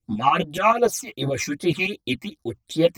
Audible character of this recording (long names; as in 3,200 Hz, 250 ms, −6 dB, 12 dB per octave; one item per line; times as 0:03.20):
phaser sweep stages 8, 2.6 Hz, lowest notch 440–2,700 Hz
tremolo saw up 7 Hz, depth 70%
a shimmering, thickened sound